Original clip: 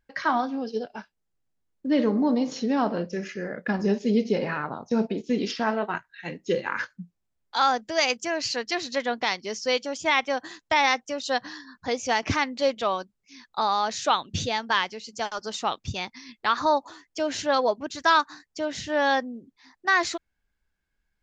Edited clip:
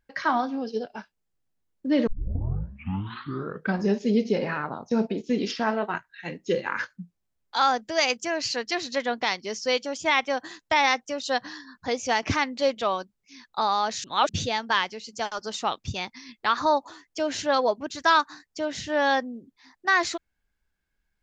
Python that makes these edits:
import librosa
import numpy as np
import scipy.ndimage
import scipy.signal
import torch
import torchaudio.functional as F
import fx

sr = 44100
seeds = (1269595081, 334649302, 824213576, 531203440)

y = fx.edit(x, sr, fx.tape_start(start_s=2.07, length_s=1.76),
    fx.reverse_span(start_s=14.04, length_s=0.25), tone=tone)